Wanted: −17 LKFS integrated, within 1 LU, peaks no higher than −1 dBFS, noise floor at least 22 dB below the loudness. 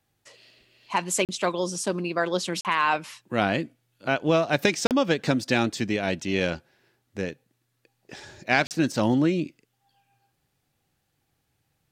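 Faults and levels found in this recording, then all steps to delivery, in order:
number of dropouts 4; longest dropout 38 ms; integrated loudness −25.5 LKFS; sample peak −5.0 dBFS; target loudness −17.0 LKFS
→ repair the gap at 0:01.25/0:02.61/0:04.87/0:08.67, 38 ms
level +8.5 dB
brickwall limiter −1 dBFS

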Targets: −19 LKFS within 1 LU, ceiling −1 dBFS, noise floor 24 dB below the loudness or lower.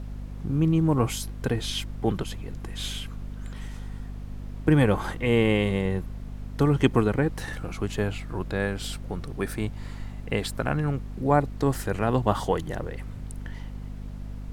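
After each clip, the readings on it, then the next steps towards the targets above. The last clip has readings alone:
mains hum 50 Hz; hum harmonics up to 250 Hz; level of the hum −34 dBFS; background noise floor −38 dBFS; target noise floor −51 dBFS; integrated loudness −26.5 LKFS; sample peak −5.5 dBFS; target loudness −19.0 LKFS
→ mains-hum notches 50/100/150/200/250 Hz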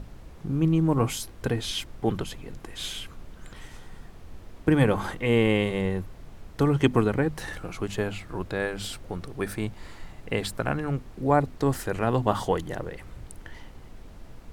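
mains hum none found; background noise floor −46 dBFS; target noise floor −51 dBFS
→ noise reduction from a noise print 6 dB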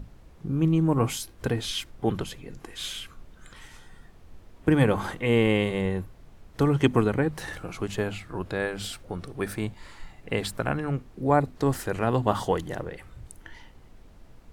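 background noise floor −52 dBFS; integrated loudness −27.0 LKFS; sample peak −6.0 dBFS; target loudness −19.0 LKFS
→ level +8 dB
brickwall limiter −1 dBFS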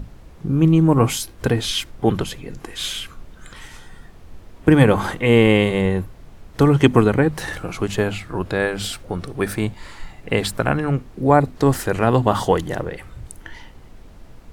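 integrated loudness −19.5 LKFS; sample peak −1.0 dBFS; background noise floor −44 dBFS

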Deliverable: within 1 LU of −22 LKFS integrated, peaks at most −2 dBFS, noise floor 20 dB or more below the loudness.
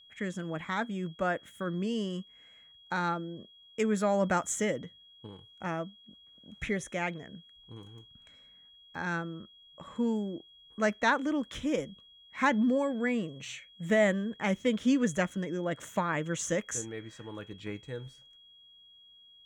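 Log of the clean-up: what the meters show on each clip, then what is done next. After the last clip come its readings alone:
interfering tone 3,300 Hz; level of the tone −55 dBFS; integrated loudness −32.0 LKFS; sample peak −14.0 dBFS; target loudness −22.0 LKFS
→ notch filter 3,300 Hz, Q 30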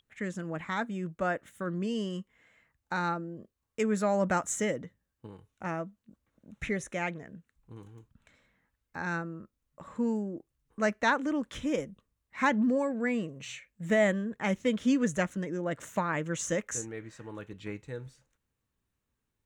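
interfering tone none found; integrated loudness −31.5 LKFS; sample peak −14.0 dBFS; target loudness −22.0 LKFS
→ level +9.5 dB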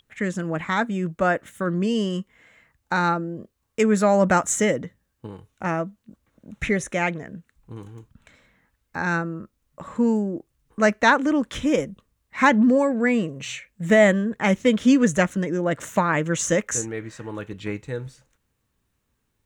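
integrated loudness −22.0 LKFS; sample peak −4.5 dBFS; background noise floor −74 dBFS

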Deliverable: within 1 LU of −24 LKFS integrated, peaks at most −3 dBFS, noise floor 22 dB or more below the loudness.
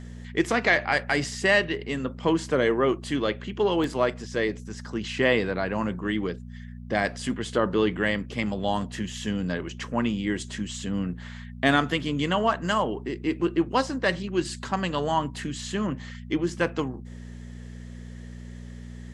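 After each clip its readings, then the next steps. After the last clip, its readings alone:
number of dropouts 1; longest dropout 2.0 ms; mains hum 60 Hz; hum harmonics up to 240 Hz; level of the hum −37 dBFS; integrated loudness −26.5 LKFS; sample peak −7.0 dBFS; target loudness −24.0 LKFS
→ repair the gap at 0:03.84, 2 ms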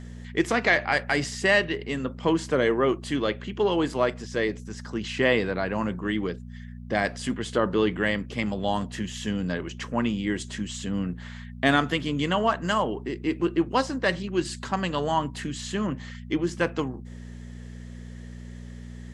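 number of dropouts 0; mains hum 60 Hz; hum harmonics up to 240 Hz; level of the hum −37 dBFS
→ hum removal 60 Hz, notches 4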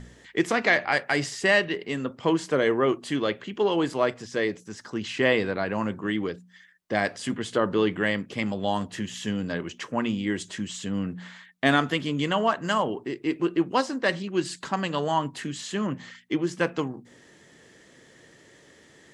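mains hum none found; integrated loudness −26.5 LKFS; sample peak −7.0 dBFS; target loudness −24.0 LKFS
→ level +2.5 dB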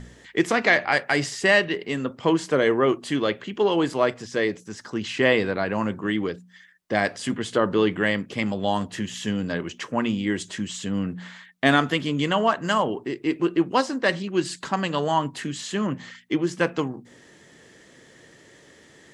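integrated loudness −24.0 LKFS; sample peak −4.5 dBFS; background noise floor −53 dBFS

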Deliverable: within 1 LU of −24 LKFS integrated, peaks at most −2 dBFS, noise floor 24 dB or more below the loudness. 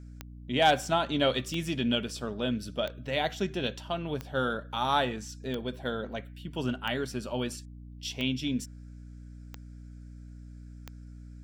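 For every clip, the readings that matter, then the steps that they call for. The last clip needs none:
number of clicks 9; mains hum 60 Hz; hum harmonics up to 300 Hz; level of the hum −43 dBFS; integrated loudness −31.0 LKFS; sample peak −13.5 dBFS; target loudness −24.0 LKFS
→ click removal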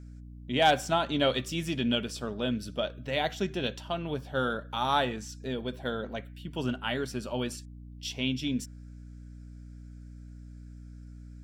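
number of clicks 0; mains hum 60 Hz; hum harmonics up to 300 Hz; level of the hum −43 dBFS
→ hum removal 60 Hz, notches 5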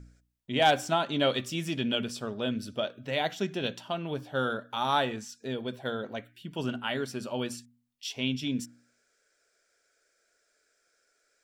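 mains hum none found; integrated loudness −31.0 LKFS; sample peak −13.5 dBFS; target loudness −24.0 LKFS
→ level +7 dB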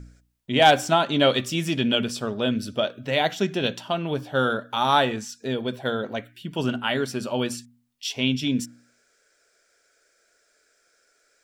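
integrated loudness −24.0 LKFS; sample peak −6.5 dBFS; background noise floor −66 dBFS

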